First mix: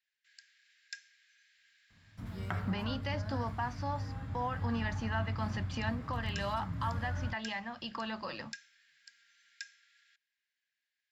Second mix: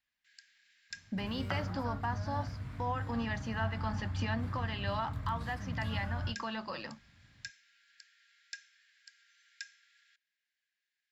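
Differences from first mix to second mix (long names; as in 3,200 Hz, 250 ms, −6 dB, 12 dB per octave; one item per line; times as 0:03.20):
speech: entry −1.55 s
second sound: entry −1.00 s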